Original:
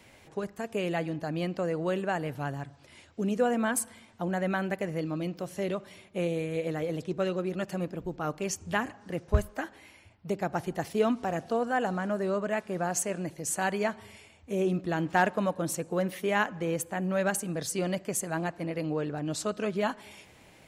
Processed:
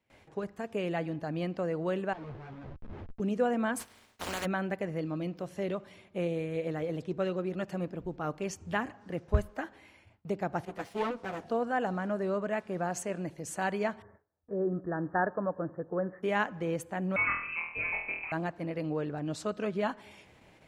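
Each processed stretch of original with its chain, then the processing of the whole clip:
2.13–3.20 s: Schmitt trigger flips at -48 dBFS + tape spacing loss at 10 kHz 28 dB + three-phase chorus
3.79–4.44 s: spectral contrast reduction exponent 0.27 + comb of notches 170 Hz
10.65–11.44 s: comb filter that takes the minimum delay 9.9 ms + high-pass 210 Hz 6 dB/octave + tape noise reduction on one side only decoder only
14.02–16.23 s: rippled Chebyshev low-pass 1.8 kHz, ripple 3 dB + peaking EQ 230 Hz -8.5 dB 0.21 oct
17.16–18.32 s: high-pass 220 Hz 6 dB/octave + flutter echo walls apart 4.2 m, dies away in 0.55 s + frequency inversion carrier 2.8 kHz
whole clip: gate with hold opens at -45 dBFS; treble shelf 5.1 kHz -11 dB; trim -2 dB

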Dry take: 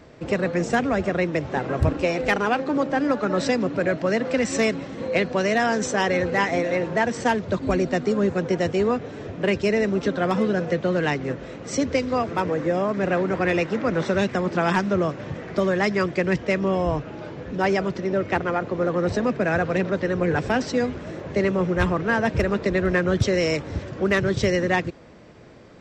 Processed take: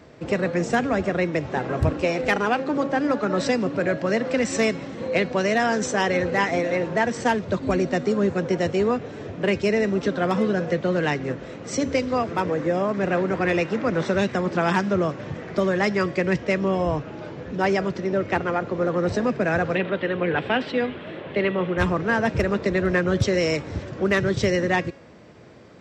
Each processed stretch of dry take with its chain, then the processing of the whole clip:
19.75–21.78 s: high-pass 210 Hz 6 dB/octave + resonant high shelf 4.5 kHz -12 dB, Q 3
whole clip: high-pass 62 Hz; de-hum 276.4 Hz, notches 32

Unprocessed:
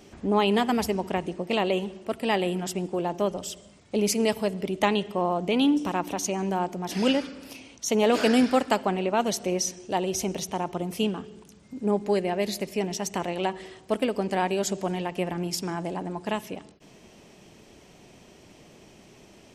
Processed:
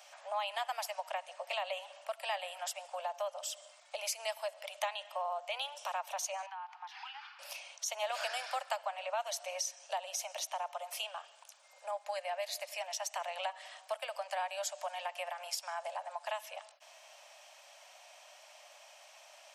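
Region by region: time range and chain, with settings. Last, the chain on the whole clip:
6.46–7.39 s: Chebyshev high-pass 780 Hz, order 8 + compression 5:1, threshold -40 dBFS + distance through air 280 m
whole clip: steep high-pass 570 Hz 96 dB/octave; band-stop 2 kHz, Q 24; compression 2.5:1, threshold -38 dBFS

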